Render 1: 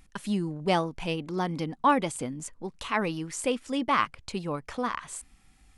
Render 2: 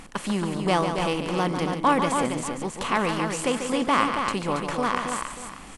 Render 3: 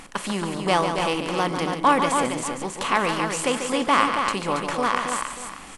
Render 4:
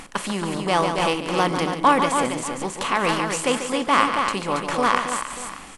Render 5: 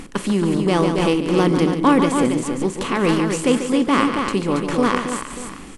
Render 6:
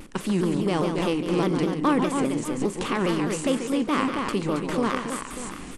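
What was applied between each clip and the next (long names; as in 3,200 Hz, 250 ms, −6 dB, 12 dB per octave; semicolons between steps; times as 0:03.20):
compressor on every frequency bin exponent 0.6; on a send: multi-tap delay 144/277/589 ms −8/−6/−16 dB
low-shelf EQ 350 Hz −7 dB; on a send at −17 dB: convolution reverb RT60 0.65 s, pre-delay 4 ms; on the sum: level +3.5 dB
amplitude modulation by smooth noise, depth 50%; level +4 dB
low shelf with overshoot 510 Hz +8.5 dB, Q 1.5; level −1 dB
camcorder AGC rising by 9.1 dB per second; pitch modulation by a square or saw wave saw down 4.9 Hz, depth 160 cents; level −7 dB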